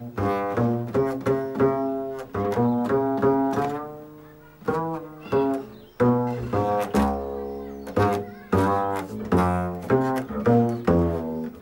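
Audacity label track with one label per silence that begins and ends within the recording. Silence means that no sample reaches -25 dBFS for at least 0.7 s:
3.800000	4.680000	silence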